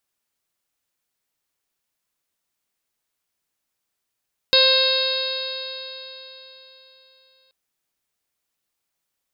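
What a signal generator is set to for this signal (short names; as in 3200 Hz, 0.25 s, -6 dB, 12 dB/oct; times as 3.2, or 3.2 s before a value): stretched partials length 2.98 s, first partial 524 Hz, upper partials -11/-8/-14/-5/-9.5/4/1.5/-5.5 dB, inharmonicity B 0.0014, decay 3.77 s, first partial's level -18.5 dB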